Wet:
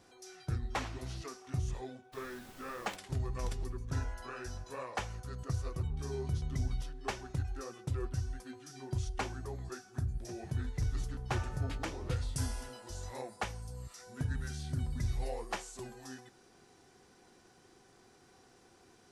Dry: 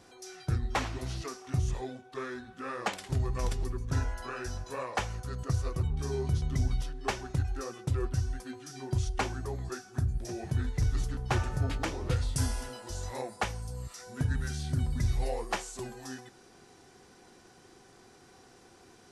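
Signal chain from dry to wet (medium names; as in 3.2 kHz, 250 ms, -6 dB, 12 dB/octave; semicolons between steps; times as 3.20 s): 2.12–2.95 s: added noise pink -49 dBFS; trim -5.5 dB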